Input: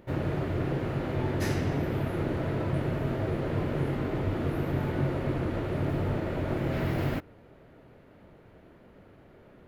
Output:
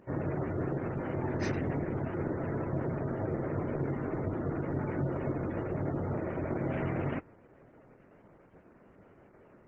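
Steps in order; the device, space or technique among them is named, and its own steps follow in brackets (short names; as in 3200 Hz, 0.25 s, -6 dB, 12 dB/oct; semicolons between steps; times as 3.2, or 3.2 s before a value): noise-suppressed video call (HPF 120 Hz 6 dB/oct; spectral gate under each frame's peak -25 dB strong; gain -1.5 dB; Opus 12 kbps 48000 Hz)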